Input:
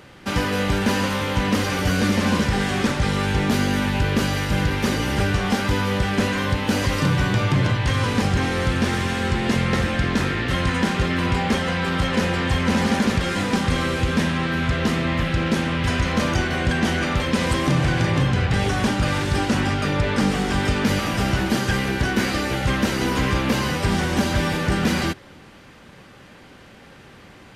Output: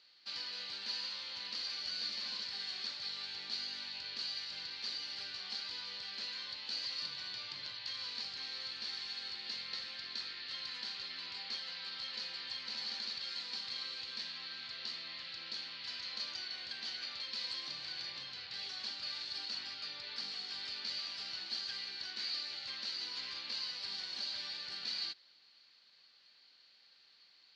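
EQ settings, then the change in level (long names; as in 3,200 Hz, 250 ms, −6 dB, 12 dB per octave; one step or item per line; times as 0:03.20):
resonant band-pass 4,400 Hz, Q 13
high-frequency loss of the air 100 metres
+6.0 dB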